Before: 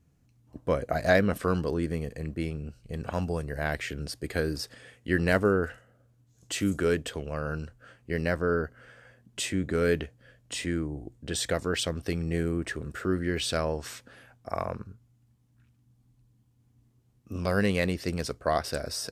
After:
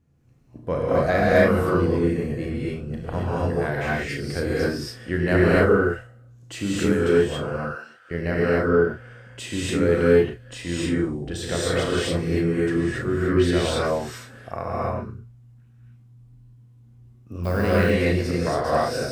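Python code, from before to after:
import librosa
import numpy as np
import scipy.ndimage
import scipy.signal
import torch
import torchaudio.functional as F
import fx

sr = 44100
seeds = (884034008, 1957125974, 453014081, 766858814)

y = fx.diode_clip(x, sr, knee_db=-10.5)
y = fx.highpass(y, sr, hz=840.0, slope=12, at=(7.43, 8.11))
y = fx.echo_wet_highpass(y, sr, ms=70, feedback_pct=62, hz=5100.0, wet_db=-18.0)
y = fx.rev_gated(y, sr, seeds[0], gate_ms=300, shape='rising', drr_db=-6.5)
y = fx.dmg_noise_colour(y, sr, seeds[1], colour='violet', level_db=-42.0, at=(17.43, 17.9), fade=0.02)
y = fx.high_shelf(y, sr, hz=3300.0, db=-8.5)
y = fx.doubler(y, sr, ms=35.0, db=-7)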